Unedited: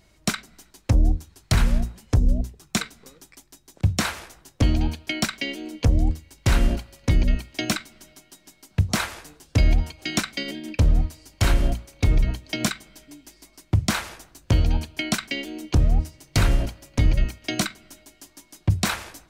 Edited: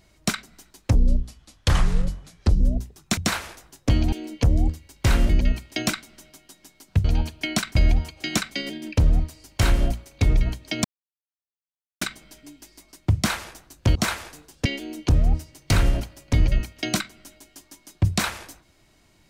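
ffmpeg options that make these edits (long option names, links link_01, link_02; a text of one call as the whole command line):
ffmpeg -i in.wav -filter_complex "[0:a]asplit=11[link_01][link_02][link_03][link_04][link_05][link_06][link_07][link_08][link_09][link_10][link_11];[link_01]atrim=end=0.954[link_12];[link_02]atrim=start=0.95:end=2.24,asetpts=PTS-STARTPTS,asetrate=34398,aresample=44100[link_13];[link_03]atrim=start=2.236:end=2.812[link_14];[link_04]atrim=start=3.898:end=4.852[link_15];[link_05]atrim=start=5.538:end=6.712[link_16];[link_06]atrim=start=7.118:end=8.872[link_17];[link_07]atrim=start=14.598:end=15.312[link_18];[link_08]atrim=start=9.568:end=12.66,asetpts=PTS-STARTPTS,afade=type=out:start_time=3.088:duration=0.004:curve=hsin,apad=pad_dur=1.17[link_19];[link_09]atrim=start=12.66:end=14.602,asetpts=PTS-STARTPTS,afade=type=in:duration=0.004:curve=hsin[link_20];[link_10]atrim=start=8.868:end=9.572[link_21];[link_11]atrim=start=15.308[link_22];[link_12][link_13]acrossfade=duration=0.004:curve1=hsin:curve2=hsin[link_23];[link_23][link_14]acrossfade=duration=0.004:curve1=hsin:curve2=hsin[link_24];[link_24][link_15]acrossfade=duration=0.004:curve1=hsin:curve2=hsin[link_25];[link_25][link_16]acrossfade=duration=0.004:curve1=hsin:curve2=hsin[link_26];[link_26][link_17]acrossfade=duration=0.004:curve1=hsin:curve2=hsin[link_27];[link_27][link_18]acrossfade=duration=0.004:curve1=hsin:curve2=hsin[link_28];[link_19][link_20]concat=n=2:v=0:a=1[link_29];[link_28][link_29]acrossfade=duration=0.004:curve1=hsin:curve2=hsin[link_30];[link_30][link_21]acrossfade=duration=0.004:curve1=hsin:curve2=hsin[link_31];[link_31][link_22]acrossfade=duration=0.004:curve1=hsin:curve2=hsin" out.wav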